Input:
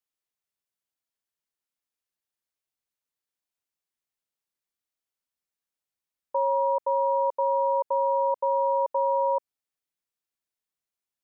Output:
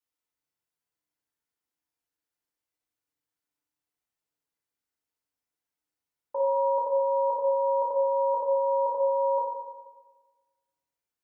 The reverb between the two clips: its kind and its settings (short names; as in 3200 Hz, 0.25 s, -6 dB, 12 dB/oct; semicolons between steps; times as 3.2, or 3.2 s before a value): FDN reverb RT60 1.3 s, low-frequency decay 1.1×, high-frequency decay 0.3×, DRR -5 dB; gain -4.5 dB